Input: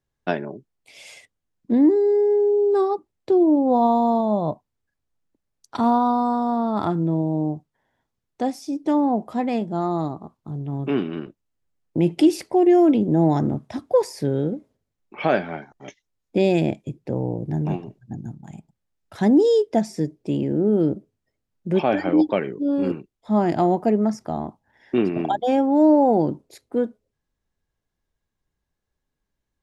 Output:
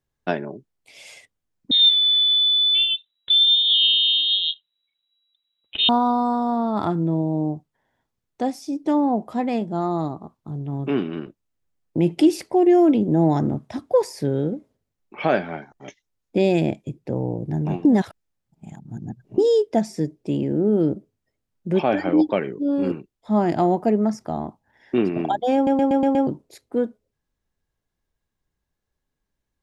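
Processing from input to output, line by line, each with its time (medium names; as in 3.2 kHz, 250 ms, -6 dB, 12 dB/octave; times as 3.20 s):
1.71–5.89 s: frequency inversion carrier 3.9 kHz
17.85–19.38 s: reverse
25.55 s: stutter in place 0.12 s, 6 plays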